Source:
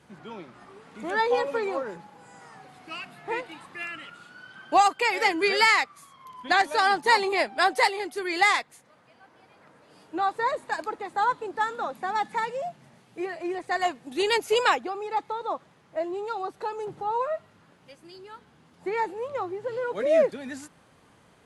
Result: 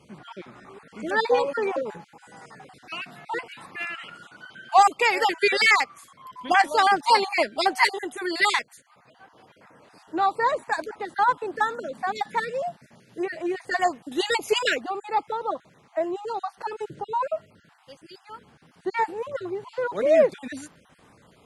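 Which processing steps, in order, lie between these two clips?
random spectral dropouts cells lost 30%; gain +3.5 dB

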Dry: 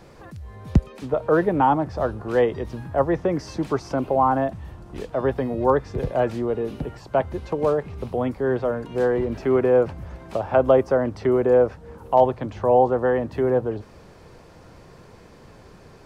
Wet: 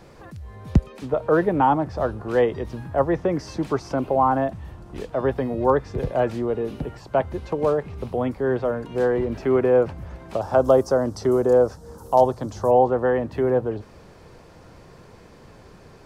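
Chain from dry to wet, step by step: 10.41–12.71 EQ curve 1300 Hz 0 dB, 2400 Hz -10 dB, 5500 Hz +13 dB

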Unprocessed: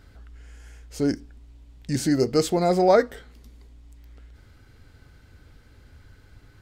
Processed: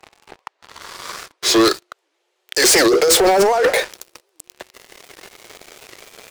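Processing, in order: speed glide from 52% -> 158%; steep high-pass 350 Hz 96 dB/oct; negative-ratio compressor -29 dBFS, ratio -1; sample leveller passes 5; record warp 78 rpm, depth 250 cents; gain +3 dB

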